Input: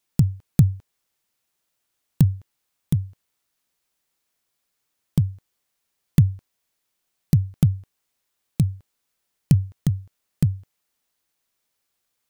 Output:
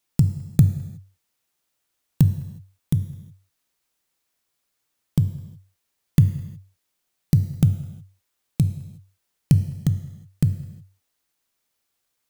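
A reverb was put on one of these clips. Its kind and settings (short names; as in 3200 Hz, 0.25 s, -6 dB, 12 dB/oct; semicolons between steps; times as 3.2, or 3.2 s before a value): non-linear reverb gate 0.39 s falling, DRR 10 dB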